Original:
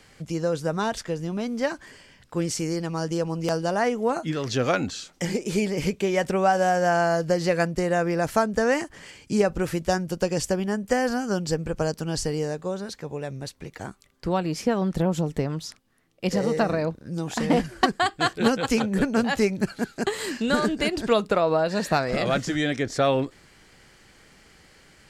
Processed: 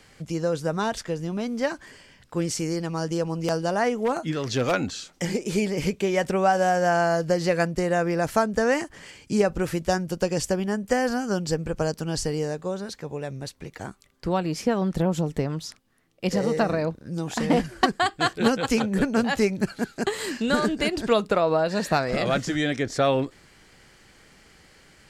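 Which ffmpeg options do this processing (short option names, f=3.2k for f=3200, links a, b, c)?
-filter_complex "[0:a]asettb=1/sr,asplit=3[a][b][c];[a]atrim=end=3.894[d];[b]atrim=start=3.89:end=4.74,asetpts=PTS-STARTPTS,afade=t=in:d=0.004:c=qsin,afade=t=out:st=0.846:d=0.004:c=qsin,aeval=exprs='0.158*(abs(mod(val(0)/0.158+3,4)-2)-1)':c=same[e];[c]atrim=start=4.736[f];[d][e]acrossfade=d=0.004:c1=hsin:c2=qsin[g];[g][f]acrossfade=d=0.004:c1=qsin:c2=hsin"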